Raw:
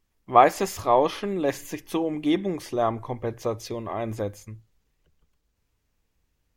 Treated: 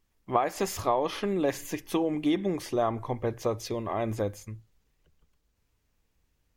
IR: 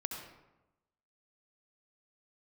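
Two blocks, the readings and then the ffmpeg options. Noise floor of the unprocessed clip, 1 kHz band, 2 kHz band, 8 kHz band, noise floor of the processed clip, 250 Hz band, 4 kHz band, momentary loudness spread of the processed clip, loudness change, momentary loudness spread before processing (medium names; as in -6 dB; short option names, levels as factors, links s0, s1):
-75 dBFS, -8.0 dB, -5.5 dB, -1.0 dB, -75 dBFS, -2.0 dB, -2.5 dB, 6 LU, -4.5 dB, 14 LU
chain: -af "acompressor=threshold=0.0891:ratio=16"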